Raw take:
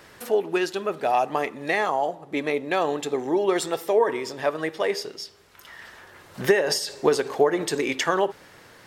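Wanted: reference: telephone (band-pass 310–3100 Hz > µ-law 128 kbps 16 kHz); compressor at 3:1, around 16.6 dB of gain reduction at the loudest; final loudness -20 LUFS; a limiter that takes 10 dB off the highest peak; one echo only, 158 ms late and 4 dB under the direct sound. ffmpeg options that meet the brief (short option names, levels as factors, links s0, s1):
-af "acompressor=threshold=0.0126:ratio=3,alimiter=level_in=2.11:limit=0.0631:level=0:latency=1,volume=0.473,highpass=310,lowpass=3100,aecho=1:1:158:0.631,volume=11.9" -ar 16000 -c:a pcm_mulaw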